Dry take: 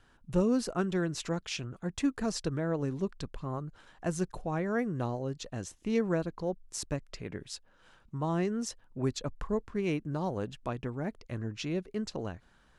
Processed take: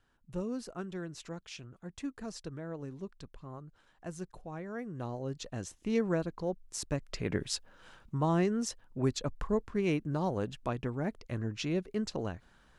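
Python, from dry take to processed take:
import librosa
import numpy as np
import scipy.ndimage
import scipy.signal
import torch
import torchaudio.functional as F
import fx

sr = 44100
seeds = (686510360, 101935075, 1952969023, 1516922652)

y = fx.gain(x, sr, db=fx.line((4.79, -9.5), (5.35, -1.0), (6.86, -1.0), (7.35, 8.0), (8.58, 1.0)))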